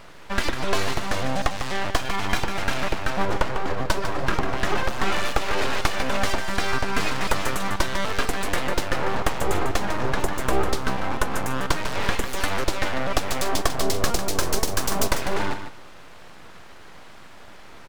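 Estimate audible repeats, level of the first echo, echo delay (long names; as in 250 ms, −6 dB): 2, −9.0 dB, 149 ms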